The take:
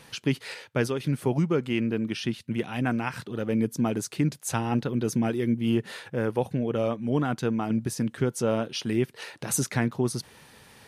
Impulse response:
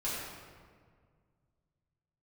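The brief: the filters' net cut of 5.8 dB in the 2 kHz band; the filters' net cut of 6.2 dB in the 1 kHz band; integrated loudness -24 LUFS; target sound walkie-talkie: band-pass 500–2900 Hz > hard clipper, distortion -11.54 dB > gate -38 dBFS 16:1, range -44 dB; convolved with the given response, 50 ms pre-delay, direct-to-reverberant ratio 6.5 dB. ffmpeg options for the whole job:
-filter_complex "[0:a]equalizer=f=1000:t=o:g=-7,equalizer=f=2000:t=o:g=-4,asplit=2[s0][s1];[1:a]atrim=start_sample=2205,adelay=50[s2];[s1][s2]afir=irnorm=-1:irlink=0,volume=0.251[s3];[s0][s3]amix=inputs=2:normalize=0,highpass=500,lowpass=2900,asoftclip=type=hard:threshold=0.0316,agate=range=0.00631:threshold=0.0126:ratio=16,volume=5.01"

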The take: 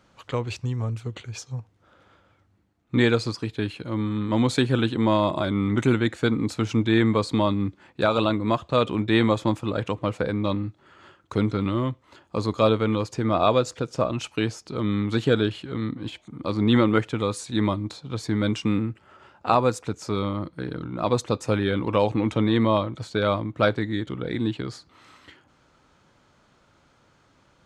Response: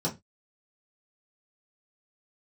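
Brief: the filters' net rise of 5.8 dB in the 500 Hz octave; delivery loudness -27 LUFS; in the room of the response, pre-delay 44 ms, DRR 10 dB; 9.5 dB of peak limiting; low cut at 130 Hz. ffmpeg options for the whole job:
-filter_complex "[0:a]highpass=130,equalizer=f=500:t=o:g=7,alimiter=limit=0.251:level=0:latency=1,asplit=2[s0][s1];[1:a]atrim=start_sample=2205,adelay=44[s2];[s1][s2]afir=irnorm=-1:irlink=0,volume=0.141[s3];[s0][s3]amix=inputs=2:normalize=0,volume=0.631"

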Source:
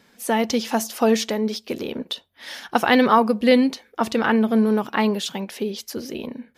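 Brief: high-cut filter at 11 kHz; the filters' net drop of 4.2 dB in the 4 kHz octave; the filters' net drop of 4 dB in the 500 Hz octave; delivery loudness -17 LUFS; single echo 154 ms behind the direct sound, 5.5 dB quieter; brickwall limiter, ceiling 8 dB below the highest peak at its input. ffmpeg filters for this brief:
-af "lowpass=11000,equalizer=f=500:t=o:g=-4.5,equalizer=f=4000:t=o:g=-5.5,alimiter=limit=0.224:level=0:latency=1,aecho=1:1:154:0.531,volume=2.24"

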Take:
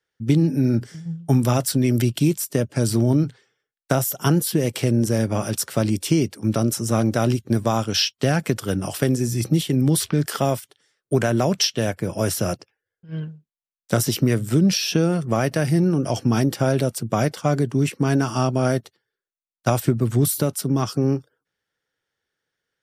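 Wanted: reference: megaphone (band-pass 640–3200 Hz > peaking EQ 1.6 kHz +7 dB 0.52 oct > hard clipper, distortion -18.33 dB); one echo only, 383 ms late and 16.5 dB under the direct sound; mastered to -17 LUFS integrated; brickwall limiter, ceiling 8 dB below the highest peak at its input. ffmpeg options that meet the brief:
-af "alimiter=limit=0.251:level=0:latency=1,highpass=640,lowpass=3200,equalizer=f=1600:t=o:w=0.52:g=7,aecho=1:1:383:0.15,asoftclip=type=hard:threshold=0.106,volume=5.31"

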